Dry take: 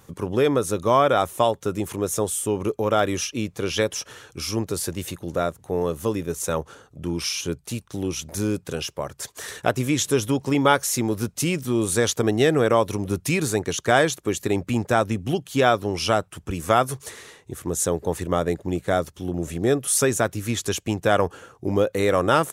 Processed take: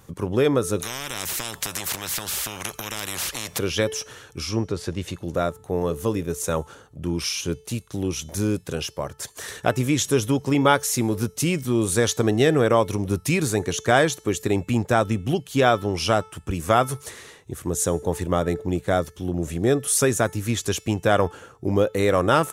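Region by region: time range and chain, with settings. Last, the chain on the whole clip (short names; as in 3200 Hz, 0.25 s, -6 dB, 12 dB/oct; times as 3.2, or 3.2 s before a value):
0.8–3.59 bell 140 Hz +12 dB 2.5 oct + compressor 2:1, threshold -23 dBFS + spectral compressor 10:1
4.26–5.23 treble ducked by the level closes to 2300 Hz, closed at -20 dBFS + bell 13000 Hz +5.5 dB 0.48 oct
whole clip: low shelf 140 Hz +4 dB; de-hum 437.4 Hz, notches 39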